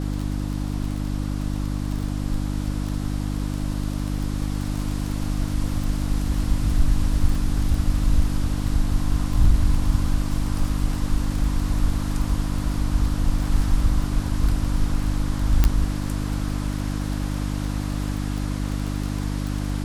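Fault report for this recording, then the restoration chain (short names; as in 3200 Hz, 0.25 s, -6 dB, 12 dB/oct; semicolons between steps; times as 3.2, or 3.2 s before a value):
crackle 21/s -26 dBFS
hum 50 Hz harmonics 6 -26 dBFS
15.64 pop -5 dBFS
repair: de-click; de-hum 50 Hz, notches 6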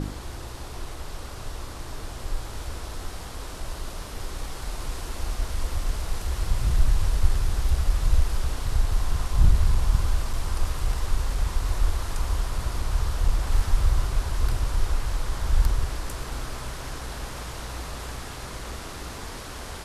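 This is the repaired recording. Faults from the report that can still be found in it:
15.64 pop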